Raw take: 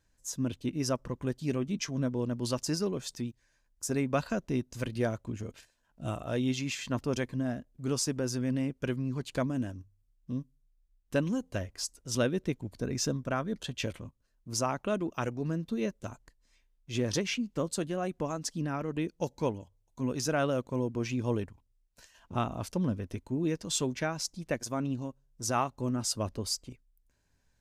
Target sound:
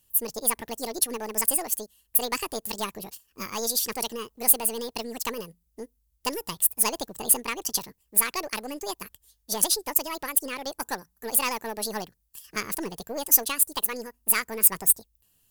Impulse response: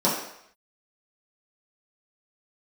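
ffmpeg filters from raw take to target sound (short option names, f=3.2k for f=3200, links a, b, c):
-af "aeval=exprs='0.158*(cos(1*acos(clip(val(0)/0.158,-1,1)))-cos(1*PI/2))+0.01*(cos(6*acos(clip(val(0)/0.158,-1,1)))-cos(6*PI/2))':c=same,crystalizer=i=10:c=0,asetrate=78498,aresample=44100,volume=-3dB"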